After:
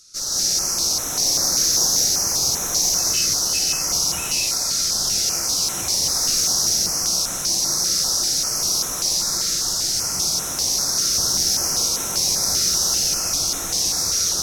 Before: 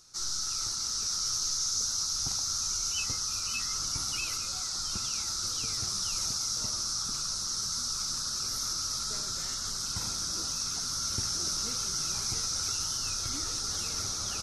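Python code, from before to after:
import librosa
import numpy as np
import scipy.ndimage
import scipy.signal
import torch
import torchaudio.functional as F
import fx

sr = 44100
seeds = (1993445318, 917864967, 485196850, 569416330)

y = fx.high_shelf(x, sr, hz=2100.0, db=10.0)
y = fx.tube_stage(y, sr, drive_db=19.0, bias=0.6)
y = fx.rev_gated(y, sr, seeds[0], gate_ms=240, shape='rising', drr_db=-4.5)
y = fx.filter_held_notch(y, sr, hz=5.1, low_hz=880.0, high_hz=4700.0)
y = y * librosa.db_to_amplitude(2.0)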